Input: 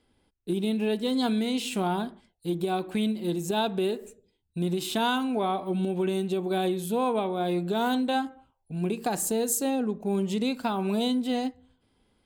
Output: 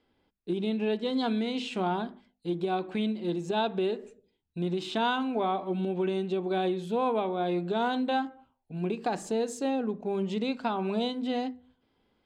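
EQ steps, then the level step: distance through air 140 m; bass shelf 140 Hz -8 dB; hum notches 50/100/150/200/250 Hz; 0.0 dB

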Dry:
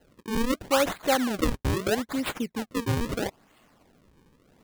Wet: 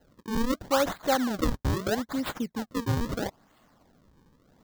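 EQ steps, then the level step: fifteen-band graphic EQ 400 Hz -4 dB, 2.5 kHz -8 dB, 10 kHz -7 dB; 0.0 dB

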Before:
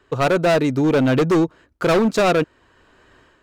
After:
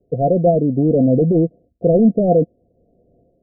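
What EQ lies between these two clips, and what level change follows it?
dynamic bell 270 Hz, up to +4 dB, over -27 dBFS, Q 0.8; rippled Chebyshev low-pass 720 Hz, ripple 9 dB; +5.0 dB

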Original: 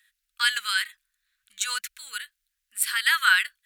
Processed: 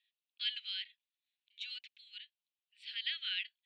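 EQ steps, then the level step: steep high-pass 2.7 kHz 36 dB/octave; low-pass 5.2 kHz 24 dB/octave; distance through air 460 m; +1.0 dB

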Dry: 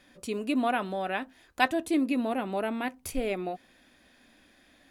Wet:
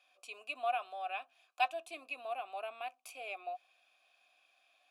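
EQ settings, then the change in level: vowel filter a; high-pass 260 Hz 24 dB/octave; differentiator; +16.5 dB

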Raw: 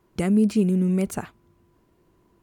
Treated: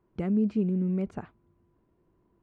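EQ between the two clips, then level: tape spacing loss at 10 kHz 33 dB; -5.5 dB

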